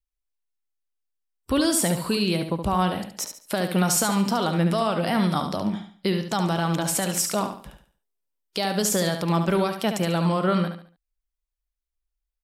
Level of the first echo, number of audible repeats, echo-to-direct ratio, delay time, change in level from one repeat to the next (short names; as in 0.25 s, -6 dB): -7.5 dB, 3, -7.0 dB, 71 ms, -9.5 dB